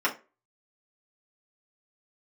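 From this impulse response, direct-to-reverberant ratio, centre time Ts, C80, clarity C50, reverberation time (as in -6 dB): -5.0 dB, 12 ms, 21.5 dB, 14.0 dB, 0.30 s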